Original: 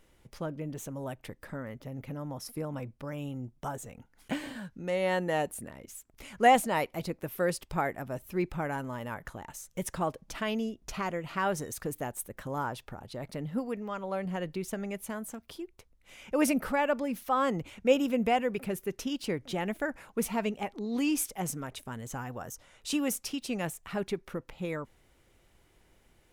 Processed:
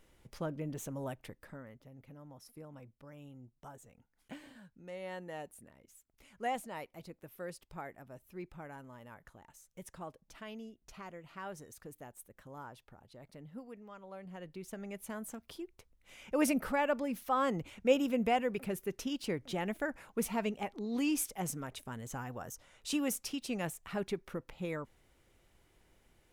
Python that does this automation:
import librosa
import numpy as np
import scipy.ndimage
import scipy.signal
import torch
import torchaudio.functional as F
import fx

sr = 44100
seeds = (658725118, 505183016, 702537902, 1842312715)

y = fx.gain(x, sr, db=fx.line((1.06, -2.0), (1.9, -14.5), (14.21, -14.5), (15.27, -3.5)))